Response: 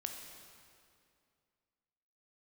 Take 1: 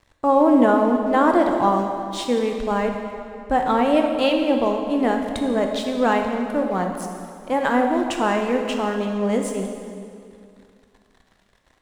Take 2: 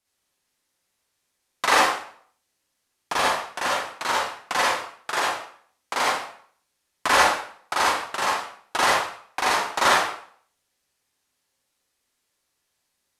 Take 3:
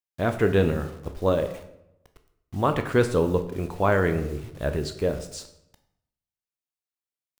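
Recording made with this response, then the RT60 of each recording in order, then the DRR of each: 1; 2.4, 0.55, 0.80 s; 3.0, -5.5, 7.5 dB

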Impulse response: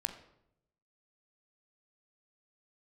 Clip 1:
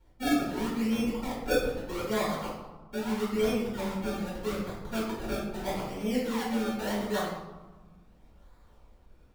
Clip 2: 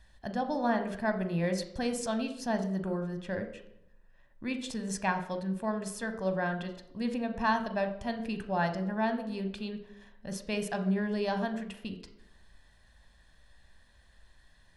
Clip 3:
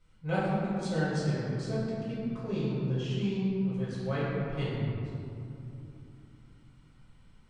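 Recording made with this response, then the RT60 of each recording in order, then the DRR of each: 2; 1.2, 0.80, 2.8 s; -8.0, 7.0, -9.0 dB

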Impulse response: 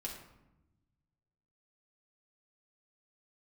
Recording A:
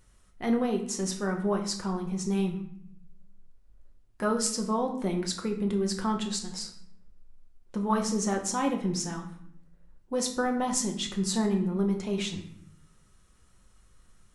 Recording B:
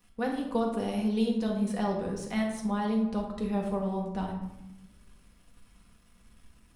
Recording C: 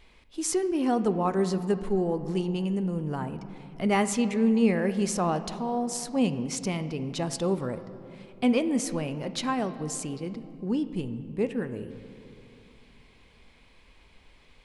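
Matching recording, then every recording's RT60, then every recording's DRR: B; 0.65, 0.95, 3.0 s; 2.5, -1.5, 10.5 dB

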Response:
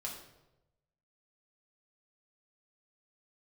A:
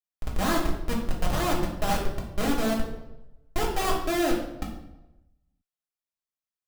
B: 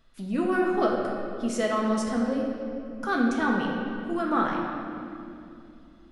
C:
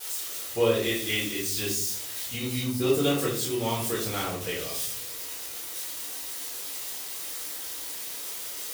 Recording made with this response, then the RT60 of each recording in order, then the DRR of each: A; 0.95, 2.6, 0.60 s; -3.0, -2.0, -9.5 dB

